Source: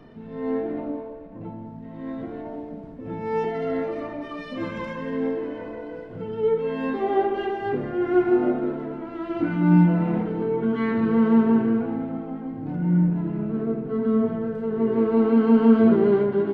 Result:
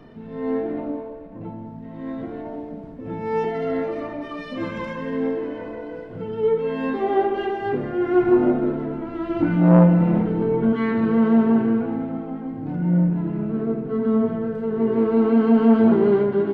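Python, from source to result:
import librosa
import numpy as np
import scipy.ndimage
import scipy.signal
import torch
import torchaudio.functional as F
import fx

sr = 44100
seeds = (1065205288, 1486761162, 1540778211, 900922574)

y = fx.low_shelf(x, sr, hz=180.0, db=9.0, at=(8.22, 10.73))
y = fx.transformer_sat(y, sr, knee_hz=440.0)
y = y * librosa.db_to_amplitude(2.0)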